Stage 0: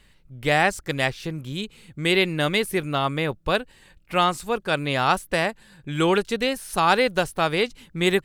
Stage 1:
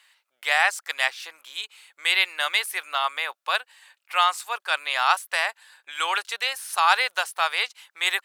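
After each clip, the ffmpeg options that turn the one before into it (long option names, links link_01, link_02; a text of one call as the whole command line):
ffmpeg -i in.wav -af "highpass=frequency=850:width=0.5412,highpass=frequency=850:width=1.3066,volume=2dB" out.wav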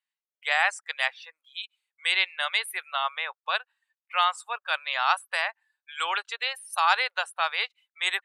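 ffmpeg -i in.wav -af "afftdn=noise_reduction=29:noise_floor=-36,volume=-3dB" out.wav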